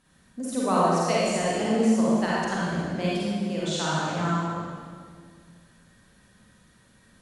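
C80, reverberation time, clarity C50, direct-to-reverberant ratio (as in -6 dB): -1.5 dB, 2.0 s, -5.5 dB, -7.5 dB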